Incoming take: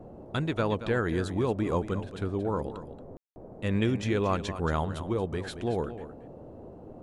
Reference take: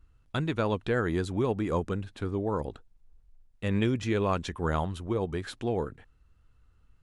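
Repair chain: room tone fill 3.17–3.36; noise print and reduce 15 dB; inverse comb 0.228 s -12 dB

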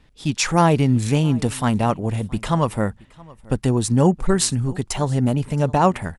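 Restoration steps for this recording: interpolate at 4.96, 1.3 ms; inverse comb 0.672 s -23.5 dB

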